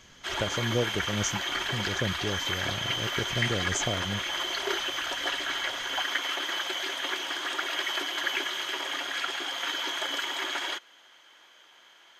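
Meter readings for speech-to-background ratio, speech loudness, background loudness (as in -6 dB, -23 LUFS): -4.0 dB, -33.5 LUFS, -29.5 LUFS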